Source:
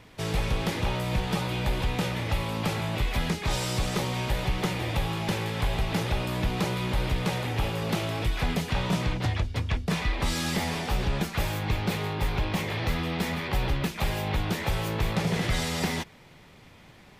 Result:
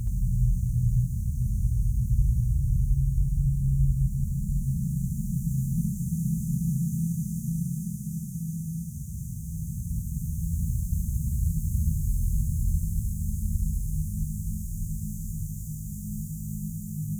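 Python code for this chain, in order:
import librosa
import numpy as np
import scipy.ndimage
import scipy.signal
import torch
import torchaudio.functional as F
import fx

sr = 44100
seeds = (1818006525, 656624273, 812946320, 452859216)

p1 = fx.tracing_dist(x, sr, depth_ms=0.043)
p2 = fx.vibrato(p1, sr, rate_hz=0.42, depth_cents=44.0)
p3 = fx.sample_hold(p2, sr, seeds[0], rate_hz=5700.0, jitter_pct=0)
p4 = p2 + (p3 * 10.0 ** (-11.5 / 20.0))
p5 = scipy.signal.sosfilt(scipy.signal.cheby1(5, 1.0, [220.0, 6500.0], 'bandstop', fs=sr, output='sos'), p4)
p6 = fx.tilt_shelf(p5, sr, db=3.0, hz=970.0)
p7 = fx.vibrato(p6, sr, rate_hz=4.3, depth_cents=12.0)
p8 = scipy.signal.sosfilt(scipy.signal.butter(2, 62.0, 'highpass', fs=sr, output='sos'), p7)
p9 = fx.peak_eq(p8, sr, hz=370.0, db=-13.5, octaves=2.4)
p10 = fx.doubler(p9, sr, ms=24.0, db=-5)
p11 = fx.paulstretch(p10, sr, seeds[1], factor=29.0, window_s=0.25, from_s=13.65)
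p12 = p11 + fx.echo_single(p11, sr, ms=73, db=-3.5, dry=0)
y = p12 * 10.0 ** (1.5 / 20.0)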